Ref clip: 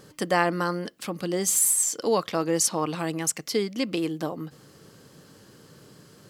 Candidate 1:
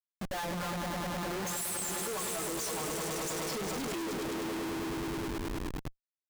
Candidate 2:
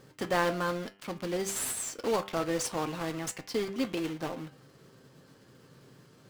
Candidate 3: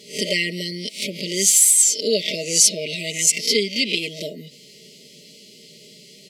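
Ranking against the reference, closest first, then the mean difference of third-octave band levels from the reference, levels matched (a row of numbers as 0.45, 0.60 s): 2, 3, 1; 5.0, 10.0, 15.5 dB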